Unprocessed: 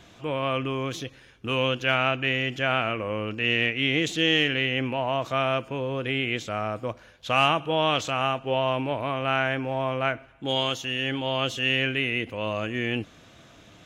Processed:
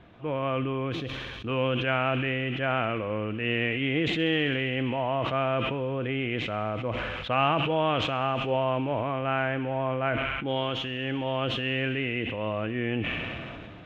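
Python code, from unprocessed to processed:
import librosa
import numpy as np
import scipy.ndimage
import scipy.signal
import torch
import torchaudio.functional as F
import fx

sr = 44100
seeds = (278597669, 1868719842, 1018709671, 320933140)

y = fx.air_absorb(x, sr, metres=490.0)
y = fx.echo_wet_highpass(y, sr, ms=66, feedback_pct=82, hz=3700.0, wet_db=-6)
y = fx.sustainer(y, sr, db_per_s=22.0)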